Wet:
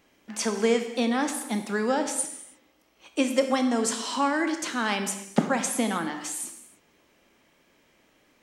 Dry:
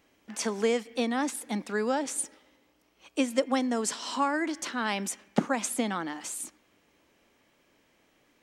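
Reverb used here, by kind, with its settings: non-linear reverb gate 0.34 s falling, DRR 6 dB; gain +2.5 dB

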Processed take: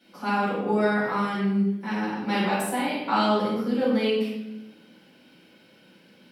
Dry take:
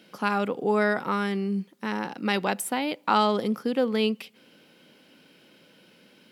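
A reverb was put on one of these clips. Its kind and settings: shoebox room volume 330 m³, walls mixed, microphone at 7.7 m; gain -15.5 dB

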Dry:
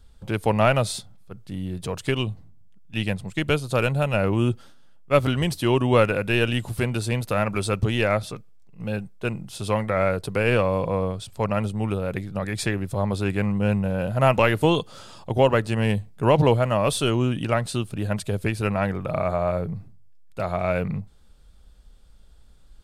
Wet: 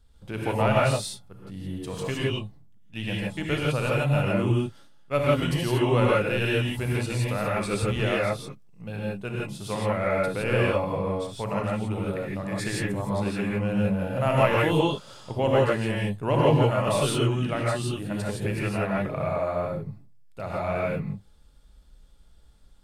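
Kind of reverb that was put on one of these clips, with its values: non-linear reverb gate 0.19 s rising, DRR -4.5 dB; gain -8 dB

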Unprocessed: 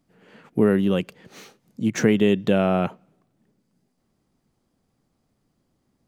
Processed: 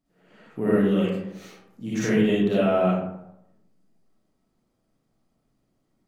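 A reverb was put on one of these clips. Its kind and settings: digital reverb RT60 0.85 s, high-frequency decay 0.45×, pre-delay 15 ms, DRR -9.5 dB; gain -11.5 dB

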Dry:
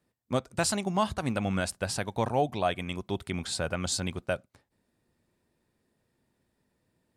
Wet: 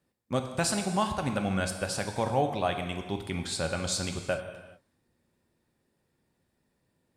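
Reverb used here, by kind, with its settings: non-linear reverb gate 0.45 s falling, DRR 5 dB; gain -1 dB

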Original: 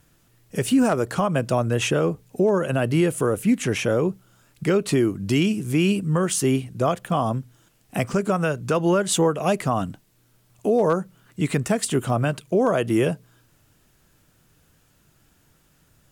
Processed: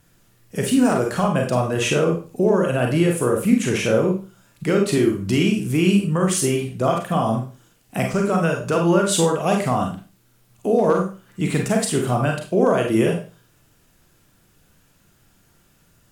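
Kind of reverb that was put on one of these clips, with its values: Schroeder reverb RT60 0.35 s, combs from 32 ms, DRR 1 dB

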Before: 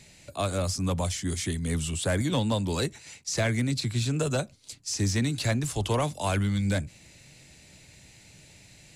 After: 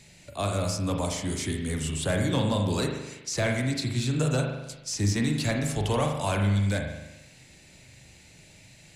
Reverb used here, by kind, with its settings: spring tank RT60 1 s, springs 39 ms, chirp 45 ms, DRR 2 dB; gain -1 dB

